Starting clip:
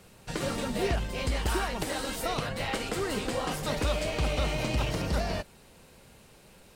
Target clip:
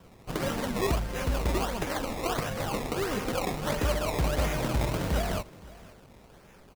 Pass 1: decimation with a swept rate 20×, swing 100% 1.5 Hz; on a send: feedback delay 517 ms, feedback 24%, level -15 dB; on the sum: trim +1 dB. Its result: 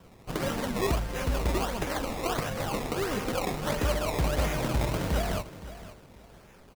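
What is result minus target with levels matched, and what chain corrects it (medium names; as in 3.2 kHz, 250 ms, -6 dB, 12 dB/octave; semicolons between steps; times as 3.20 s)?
echo-to-direct +6 dB
decimation with a swept rate 20×, swing 100% 1.5 Hz; on a send: feedback delay 517 ms, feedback 24%, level -21 dB; on the sum: trim +1 dB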